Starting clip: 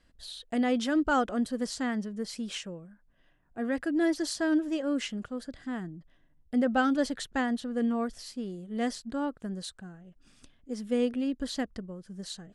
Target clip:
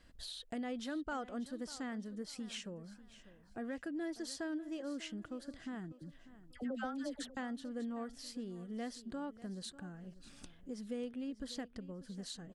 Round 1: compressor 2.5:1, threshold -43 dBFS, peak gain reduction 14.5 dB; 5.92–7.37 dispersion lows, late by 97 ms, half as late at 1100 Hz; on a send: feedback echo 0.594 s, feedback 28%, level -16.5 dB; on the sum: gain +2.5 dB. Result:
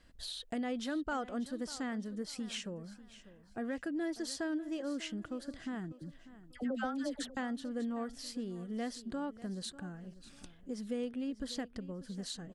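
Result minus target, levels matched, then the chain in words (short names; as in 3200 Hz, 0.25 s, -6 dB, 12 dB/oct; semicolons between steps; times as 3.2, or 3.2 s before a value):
compressor: peak gain reduction -4 dB
compressor 2.5:1, threshold -49.5 dBFS, peak gain reduction 18.5 dB; 5.92–7.37 dispersion lows, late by 97 ms, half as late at 1100 Hz; on a send: feedback echo 0.594 s, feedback 28%, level -16.5 dB; on the sum: gain +2.5 dB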